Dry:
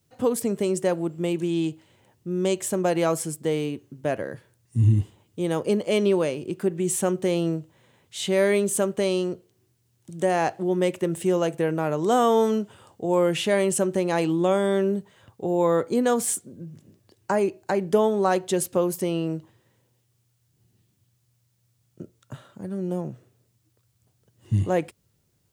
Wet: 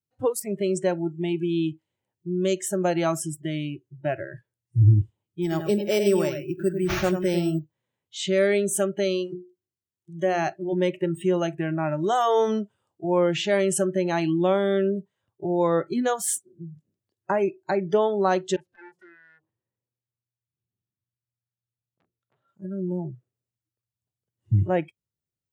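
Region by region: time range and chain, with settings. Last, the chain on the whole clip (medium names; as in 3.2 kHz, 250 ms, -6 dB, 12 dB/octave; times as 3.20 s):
5.42–7.59 s: delay 98 ms -6.5 dB + sample-rate reducer 8.2 kHz
9.04–10.73 s: hum notches 60/120/180/240/300/360/420 Hz + dynamic bell 900 Hz, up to -5 dB, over -38 dBFS, Q 3.5
18.56–22.48 s: compression 4:1, threshold -33 dBFS + tape spacing loss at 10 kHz 21 dB + transformer saturation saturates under 2.8 kHz
whole clip: spectral noise reduction 24 dB; dynamic bell 120 Hz, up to +3 dB, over -49 dBFS, Q 2.4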